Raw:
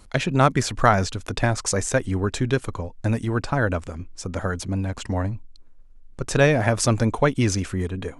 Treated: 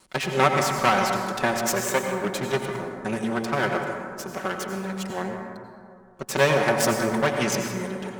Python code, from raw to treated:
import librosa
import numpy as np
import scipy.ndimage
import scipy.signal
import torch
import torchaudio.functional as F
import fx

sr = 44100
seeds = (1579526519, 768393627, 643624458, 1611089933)

y = fx.lower_of_two(x, sr, delay_ms=5.3)
y = fx.highpass(y, sr, hz=380.0, slope=6)
y = fx.rev_plate(y, sr, seeds[0], rt60_s=2.3, hf_ratio=0.35, predelay_ms=75, drr_db=3.0)